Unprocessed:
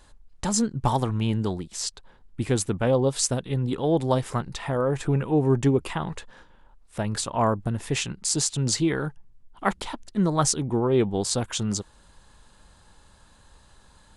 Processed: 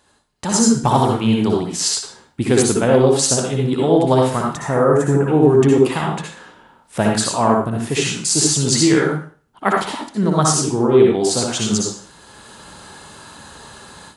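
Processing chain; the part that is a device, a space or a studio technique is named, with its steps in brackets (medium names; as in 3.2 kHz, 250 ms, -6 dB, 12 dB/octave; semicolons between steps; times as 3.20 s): far laptop microphone (reverberation RT60 0.45 s, pre-delay 56 ms, DRR -1.5 dB; high-pass 120 Hz 12 dB/octave; level rider gain up to 16.5 dB); 4.55–5.28 s: high-order bell 3.4 kHz -13.5 dB 1.3 oct; trim -1 dB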